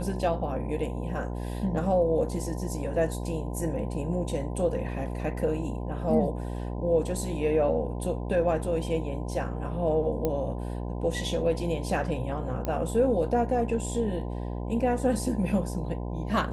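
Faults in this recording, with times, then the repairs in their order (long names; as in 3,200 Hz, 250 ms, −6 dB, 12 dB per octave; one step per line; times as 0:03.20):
mains buzz 60 Hz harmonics 17 −33 dBFS
0:10.25: click −15 dBFS
0:12.65: click −17 dBFS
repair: click removal
hum removal 60 Hz, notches 17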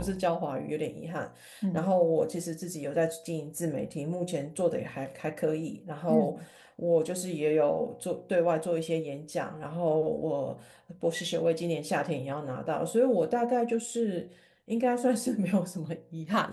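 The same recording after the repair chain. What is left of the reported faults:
none of them is left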